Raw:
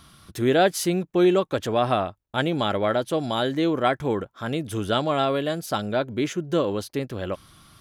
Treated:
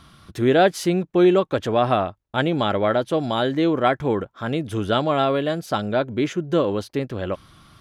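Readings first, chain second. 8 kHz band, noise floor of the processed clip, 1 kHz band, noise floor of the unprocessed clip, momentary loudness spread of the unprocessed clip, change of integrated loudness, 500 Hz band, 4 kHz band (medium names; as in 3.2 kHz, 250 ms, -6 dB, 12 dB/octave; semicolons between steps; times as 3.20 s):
no reading, -63 dBFS, +3.0 dB, -64 dBFS, 10 LU, +2.5 dB, +3.0 dB, +0.5 dB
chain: treble shelf 6.4 kHz -12 dB; trim +3 dB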